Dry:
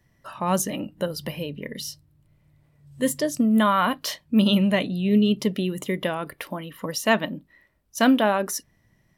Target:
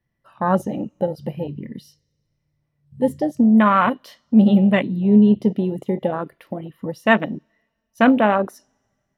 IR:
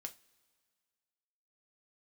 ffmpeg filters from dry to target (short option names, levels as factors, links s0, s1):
-filter_complex "[0:a]asplit=2[s0][s1];[s1]lowpass=f=7100:w=0.5412,lowpass=f=7100:w=1.3066[s2];[1:a]atrim=start_sample=2205,asetrate=40572,aresample=44100[s3];[s2][s3]afir=irnorm=-1:irlink=0,volume=1.26[s4];[s0][s4]amix=inputs=2:normalize=0,afwtdn=0.1"